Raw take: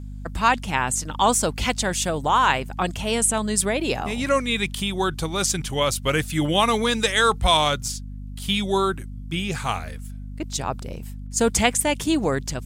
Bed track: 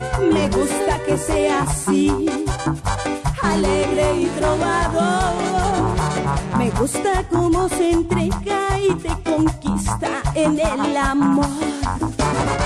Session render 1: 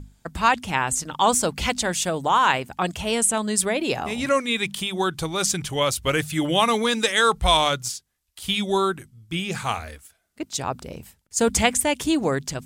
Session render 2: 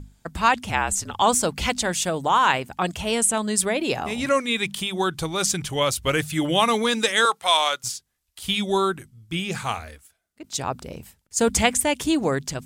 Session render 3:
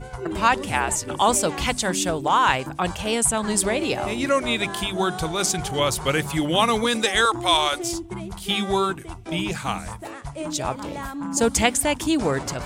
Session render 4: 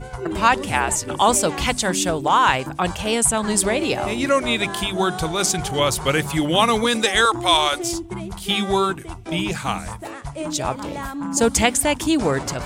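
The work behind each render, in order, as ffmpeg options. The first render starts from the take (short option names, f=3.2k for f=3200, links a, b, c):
-af "bandreject=f=50:t=h:w=6,bandreject=f=100:t=h:w=6,bandreject=f=150:t=h:w=6,bandreject=f=200:t=h:w=6,bandreject=f=250:t=h:w=6"
-filter_complex "[0:a]asettb=1/sr,asplit=3[a][b][c];[a]atrim=end=0.694[d];[b]atrim=start=0.69:end=1.22,asetpts=PTS-STARTPTS,afade=t=in:d=0.004:c=qsin,afade=t=out:st=0.526:d=0.004:c=qsin,afreqshift=-53[e];[c]atrim=start=1.216[f];[d][e]acrossfade=d=0.004:c1=hsin:c2=qsin[g];[g][f]acrossfade=d=0.004:c1=qsin:c2=hsin,asettb=1/sr,asplit=3[h][i][j];[h]atrim=end=7.254[k];[i]atrim=start=7.25:end=7.84,asetpts=PTS-STARTPTS,afade=t=in:d=0.004:c=qsin,afade=t=out:st=0.586:d=0.004:c=qsin,highpass=620[l];[j]atrim=start=7.836[m];[k][l]acrossfade=d=0.004:c1=hsin:c2=qsin[n];[n][m]acrossfade=d=0.004:c1=qsin:c2=hsin,asplit=2[o][p];[o]atrim=end=10.44,asetpts=PTS-STARTPTS,afade=t=out:st=9.52:d=0.92:silence=0.316228[q];[p]atrim=start=10.44,asetpts=PTS-STARTPTS,afade=t=in:d=0.004:c=hsin:silence=0.316228[r];[q][r]concat=n=2:v=0:a=1"
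-filter_complex "[1:a]volume=-14dB[a];[0:a][a]amix=inputs=2:normalize=0"
-af "volume=2.5dB,alimiter=limit=-2dB:level=0:latency=1"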